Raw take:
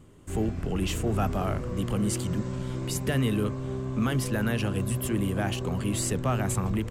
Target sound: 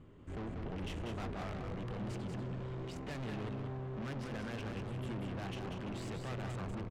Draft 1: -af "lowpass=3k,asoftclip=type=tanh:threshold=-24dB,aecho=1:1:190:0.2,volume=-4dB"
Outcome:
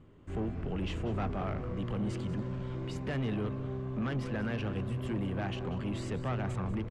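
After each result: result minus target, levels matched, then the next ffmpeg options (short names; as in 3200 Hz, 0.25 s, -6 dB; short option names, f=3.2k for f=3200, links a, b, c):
echo-to-direct -9 dB; soft clip: distortion -9 dB
-af "lowpass=3k,asoftclip=type=tanh:threshold=-24dB,aecho=1:1:190:0.562,volume=-4dB"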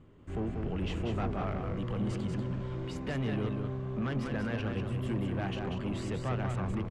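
soft clip: distortion -9 dB
-af "lowpass=3k,asoftclip=type=tanh:threshold=-36dB,aecho=1:1:190:0.562,volume=-4dB"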